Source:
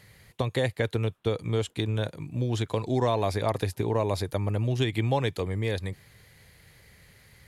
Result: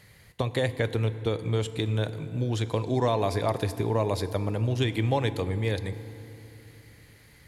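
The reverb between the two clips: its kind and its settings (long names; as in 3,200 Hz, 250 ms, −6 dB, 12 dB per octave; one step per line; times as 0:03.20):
feedback delay network reverb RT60 3.1 s, low-frequency decay 1.2×, high-frequency decay 0.6×, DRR 12 dB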